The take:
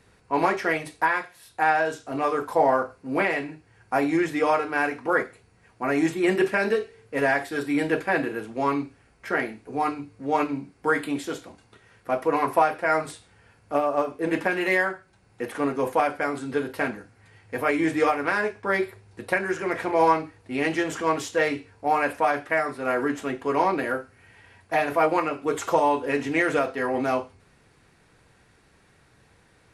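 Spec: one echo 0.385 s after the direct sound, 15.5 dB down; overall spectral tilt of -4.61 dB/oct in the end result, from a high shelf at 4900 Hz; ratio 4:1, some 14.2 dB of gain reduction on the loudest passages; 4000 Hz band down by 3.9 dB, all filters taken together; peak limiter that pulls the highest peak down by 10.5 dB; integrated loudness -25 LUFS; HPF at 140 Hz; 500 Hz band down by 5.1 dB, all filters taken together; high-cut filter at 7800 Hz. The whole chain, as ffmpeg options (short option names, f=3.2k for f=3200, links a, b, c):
-af "highpass=140,lowpass=7.8k,equalizer=f=500:t=o:g=-6.5,equalizer=f=4k:t=o:g=-8,highshelf=f=4.9k:g=5.5,acompressor=threshold=-36dB:ratio=4,alimiter=level_in=6.5dB:limit=-24dB:level=0:latency=1,volume=-6.5dB,aecho=1:1:385:0.168,volume=16.5dB"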